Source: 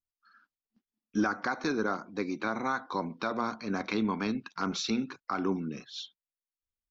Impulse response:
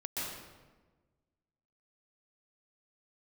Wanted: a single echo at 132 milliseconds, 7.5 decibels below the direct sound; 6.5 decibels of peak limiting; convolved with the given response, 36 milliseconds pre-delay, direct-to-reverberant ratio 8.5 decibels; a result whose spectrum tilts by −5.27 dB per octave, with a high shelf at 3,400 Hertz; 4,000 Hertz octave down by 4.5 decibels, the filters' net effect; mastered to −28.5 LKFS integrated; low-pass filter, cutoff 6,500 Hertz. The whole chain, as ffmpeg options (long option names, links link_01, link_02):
-filter_complex "[0:a]lowpass=6500,highshelf=frequency=3400:gain=3,equalizer=frequency=4000:width_type=o:gain=-6.5,alimiter=limit=-24dB:level=0:latency=1,aecho=1:1:132:0.422,asplit=2[link_01][link_02];[1:a]atrim=start_sample=2205,adelay=36[link_03];[link_02][link_03]afir=irnorm=-1:irlink=0,volume=-12dB[link_04];[link_01][link_04]amix=inputs=2:normalize=0,volume=6dB"